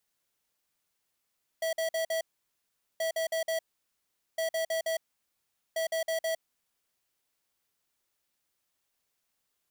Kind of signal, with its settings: beep pattern square 651 Hz, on 0.11 s, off 0.05 s, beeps 4, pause 0.79 s, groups 4, -30 dBFS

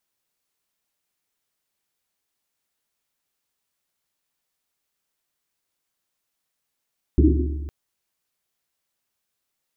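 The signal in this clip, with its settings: Risset drum length 0.51 s, pitch 72 Hz, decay 1.98 s, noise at 310 Hz, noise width 120 Hz, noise 40%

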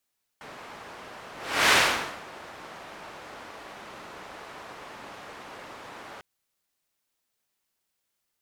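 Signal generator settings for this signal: whoosh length 5.80 s, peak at 1.30 s, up 0.39 s, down 0.58 s, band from 1 kHz, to 2 kHz, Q 0.72, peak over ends 24.5 dB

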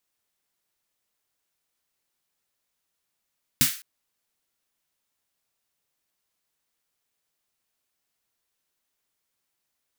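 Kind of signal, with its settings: snare drum length 0.21 s, tones 140 Hz, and 250 Hz, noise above 1.5 kHz, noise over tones 5 dB, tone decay 0.14 s, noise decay 0.39 s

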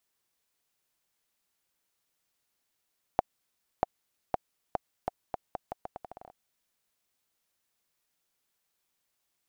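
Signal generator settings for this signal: bouncing ball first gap 0.64 s, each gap 0.8, 733 Hz, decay 19 ms -9 dBFS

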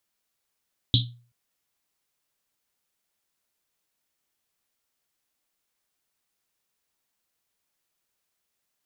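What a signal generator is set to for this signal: Risset drum length 0.38 s, pitch 120 Hz, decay 0.43 s, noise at 3.6 kHz, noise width 940 Hz, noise 40%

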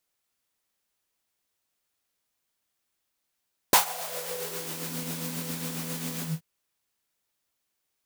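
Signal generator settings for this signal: synth patch with tremolo E3, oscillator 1 triangle, oscillator 2 saw, interval +19 st, detune 18 cents, oscillator 2 level -15.5 dB, noise -1 dB, filter highpass, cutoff 110 Hz, Q 5.3, filter envelope 3 oct, filter decay 1.23 s, attack 3 ms, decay 0.12 s, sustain -18.5 dB, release 0.18 s, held 2.50 s, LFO 7.4 Hz, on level 4 dB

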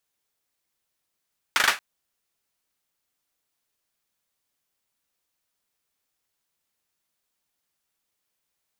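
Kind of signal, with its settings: hand clap length 0.23 s, apart 39 ms, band 1.6 kHz, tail 0.23 s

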